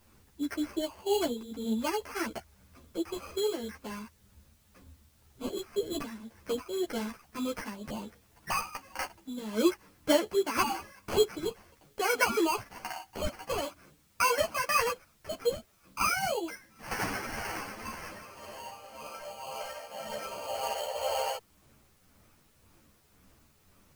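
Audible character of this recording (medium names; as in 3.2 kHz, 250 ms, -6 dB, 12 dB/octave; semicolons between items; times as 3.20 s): aliases and images of a low sample rate 3.7 kHz, jitter 0%; tremolo triangle 1.9 Hz, depth 60%; a quantiser's noise floor 12-bit, dither triangular; a shimmering, thickened sound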